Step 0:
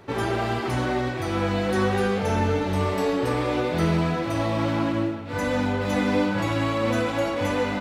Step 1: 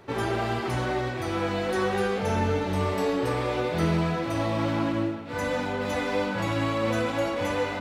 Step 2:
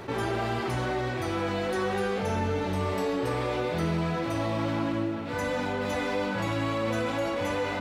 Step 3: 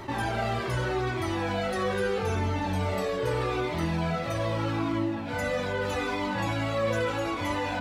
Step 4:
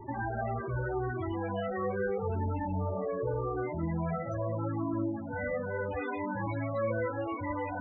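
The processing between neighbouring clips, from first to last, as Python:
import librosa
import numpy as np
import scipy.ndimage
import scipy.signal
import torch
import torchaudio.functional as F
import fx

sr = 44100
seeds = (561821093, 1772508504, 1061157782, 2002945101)

y1 = fx.hum_notches(x, sr, base_hz=50, count=6)
y1 = F.gain(torch.from_numpy(y1), -2.0).numpy()
y2 = fx.env_flatten(y1, sr, amount_pct=50)
y2 = F.gain(torch.from_numpy(y2), -4.5).numpy()
y3 = fx.comb_cascade(y2, sr, direction='falling', hz=0.8)
y3 = F.gain(torch.from_numpy(y3), 5.0).numpy()
y4 = fx.spec_topn(y3, sr, count=16)
y4 = F.gain(torch.from_numpy(y4), -3.5).numpy()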